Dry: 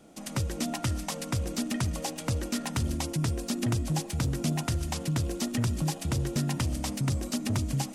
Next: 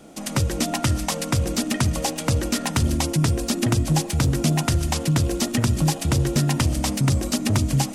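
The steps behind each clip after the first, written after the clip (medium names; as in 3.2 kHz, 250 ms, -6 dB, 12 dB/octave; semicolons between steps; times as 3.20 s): hum notches 60/120/180/240 Hz; trim +9 dB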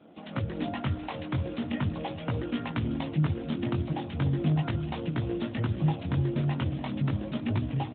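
chorus 0.39 Hz, delay 17 ms, depth 5.7 ms; feedback delay 296 ms, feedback 45%, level -14 dB; trim -4 dB; AMR-NB 12.2 kbps 8 kHz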